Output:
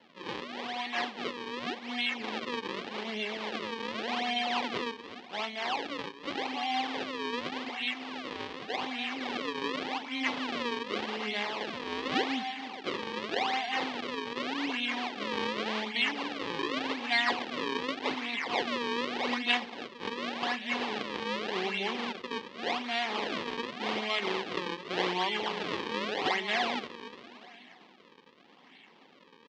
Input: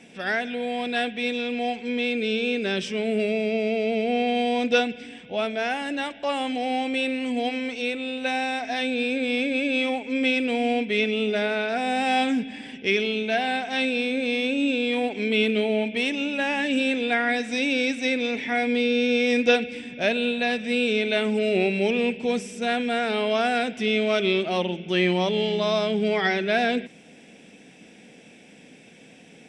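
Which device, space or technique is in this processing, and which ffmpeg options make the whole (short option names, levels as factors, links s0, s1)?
circuit-bent sampling toy: -af "aecho=1:1:1:0.94,aecho=1:1:291|582|873|1164|1455:0.282|0.138|0.0677|0.0332|0.0162,acrusher=samples=36:mix=1:aa=0.000001:lfo=1:lforange=57.6:lforate=0.86,highpass=490,equalizer=f=640:t=q:w=4:g=-9,equalizer=f=1400:t=q:w=4:g=-7,equalizer=f=3200:t=q:w=4:g=3,lowpass=f=4400:w=0.5412,lowpass=f=4400:w=1.3066,volume=0.708"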